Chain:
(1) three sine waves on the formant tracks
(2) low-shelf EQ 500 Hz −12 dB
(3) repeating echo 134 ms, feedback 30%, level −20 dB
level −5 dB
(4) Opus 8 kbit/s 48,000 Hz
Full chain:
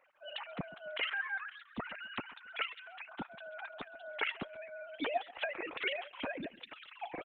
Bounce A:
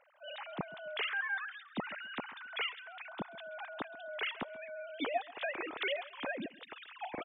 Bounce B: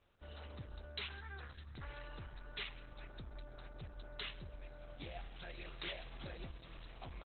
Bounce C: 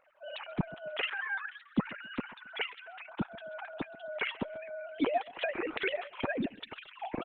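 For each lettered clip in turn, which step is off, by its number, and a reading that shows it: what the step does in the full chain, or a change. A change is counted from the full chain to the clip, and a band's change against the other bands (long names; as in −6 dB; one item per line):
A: 4, change in crest factor −4.0 dB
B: 1, 125 Hz band +17.0 dB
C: 2, 125 Hz band +8.0 dB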